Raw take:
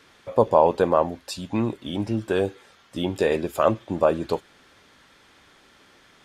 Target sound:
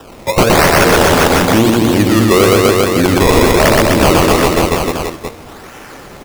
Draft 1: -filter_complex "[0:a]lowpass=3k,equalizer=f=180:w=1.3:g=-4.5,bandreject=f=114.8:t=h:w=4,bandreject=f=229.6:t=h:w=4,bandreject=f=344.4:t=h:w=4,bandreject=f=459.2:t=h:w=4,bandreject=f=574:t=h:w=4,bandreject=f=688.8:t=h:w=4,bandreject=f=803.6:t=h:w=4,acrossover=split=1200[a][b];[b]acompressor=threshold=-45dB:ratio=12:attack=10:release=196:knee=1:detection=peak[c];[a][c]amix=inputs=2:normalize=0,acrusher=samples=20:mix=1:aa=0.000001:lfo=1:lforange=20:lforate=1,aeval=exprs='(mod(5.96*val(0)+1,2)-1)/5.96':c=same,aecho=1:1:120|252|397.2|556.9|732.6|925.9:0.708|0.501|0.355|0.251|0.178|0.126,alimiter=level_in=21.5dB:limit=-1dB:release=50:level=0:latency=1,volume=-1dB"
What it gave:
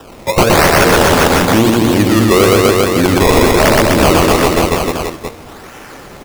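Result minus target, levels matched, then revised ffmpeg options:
compressor: peak gain reduction -8.5 dB
-filter_complex "[0:a]lowpass=3k,equalizer=f=180:w=1.3:g=-4.5,bandreject=f=114.8:t=h:w=4,bandreject=f=229.6:t=h:w=4,bandreject=f=344.4:t=h:w=4,bandreject=f=459.2:t=h:w=4,bandreject=f=574:t=h:w=4,bandreject=f=688.8:t=h:w=4,bandreject=f=803.6:t=h:w=4,acrossover=split=1200[a][b];[b]acompressor=threshold=-54.5dB:ratio=12:attack=10:release=196:knee=1:detection=peak[c];[a][c]amix=inputs=2:normalize=0,acrusher=samples=20:mix=1:aa=0.000001:lfo=1:lforange=20:lforate=1,aeval=exprs='(mod(5.96*val(0)+1,2)-1)/5.96':c=same,aecho=1:1:120|252|397.2|556.9|732.6|925.9:0.708|0.501|0.355|0.251|0.178|0.126,alimiter=level_in=21.5dB:limit=-1dB:release=50:level=0:latency=1,volume=-1dB"

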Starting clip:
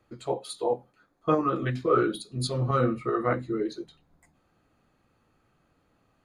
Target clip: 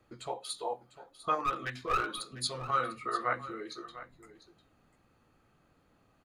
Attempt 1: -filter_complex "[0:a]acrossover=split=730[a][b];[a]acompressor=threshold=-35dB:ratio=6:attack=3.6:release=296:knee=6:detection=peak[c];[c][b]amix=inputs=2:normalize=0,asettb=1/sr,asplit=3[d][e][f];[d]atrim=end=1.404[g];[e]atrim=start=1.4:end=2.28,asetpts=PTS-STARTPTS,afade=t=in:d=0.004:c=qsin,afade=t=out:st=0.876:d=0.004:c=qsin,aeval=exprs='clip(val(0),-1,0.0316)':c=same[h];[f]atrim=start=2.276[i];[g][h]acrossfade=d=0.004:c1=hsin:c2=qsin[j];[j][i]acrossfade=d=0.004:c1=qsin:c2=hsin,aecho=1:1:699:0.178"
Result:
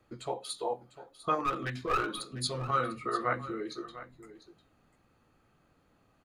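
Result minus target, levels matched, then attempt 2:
compressor: peak gain reduction -7 dB
-filter_complex "[0:a]acrossover=split=730[a][b];[a]acompressor=threshold=-43.5dB:ratio=6:attack=3.6:release=296:knee=6:detection=peak[c];[c][b]amix=inputs=2:normalize=0,asettb=1/sr,asplit=3[d][e][f];[d]atrim=end=1.404[g];[e]atrim=start=1.4:end=2.28,asetpts=PTS-STARTPTS,afade=t=in:d=0.004:c=qsin,afade=t=out:st=0.876:d=0.004:c=qsin,aeval=exprs='clip(val(0),-1,0.0316)':c=same[h];[f]atrim=start=2.276[i];[g][h]acrossfade=d=0.004:c1=hsin:c2=qsin[j];[j][i]acrossfade=d=0.004:c1=qsin:c2=hsin,aecho=1:1:699:0.178"

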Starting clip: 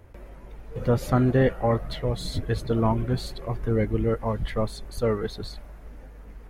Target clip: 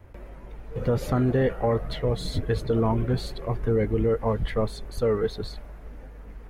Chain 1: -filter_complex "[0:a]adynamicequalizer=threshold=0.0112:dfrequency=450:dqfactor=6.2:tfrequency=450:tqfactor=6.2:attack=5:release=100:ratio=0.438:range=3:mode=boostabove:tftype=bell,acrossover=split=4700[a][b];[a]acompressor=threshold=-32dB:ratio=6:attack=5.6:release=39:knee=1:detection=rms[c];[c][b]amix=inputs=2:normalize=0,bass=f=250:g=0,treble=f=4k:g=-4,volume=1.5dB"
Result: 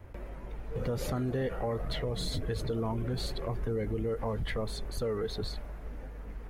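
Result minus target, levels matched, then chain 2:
compressor: peak gain reduction +9.5 dB
-filter_complex "[0:a]adynamicequalizer=threshold=0.0112:dfrequency=450:dqfactor=6.2:tfrequency=450:tqfactor=6.2:attack=5:release=100:ratio=0.438:range=3:mode=boostabove:tftype=bell,acrossover=split=4700[a][b];[a]acompressor=threshold=-20.5dB:ratio=6:attack=5.6:release=39:knee=1:detection=rms[c];[c][b]amix=inputs=2:normalize=0,bass=f=250:g=0,treble=f=4k:g=-4,volume=1.5dB"

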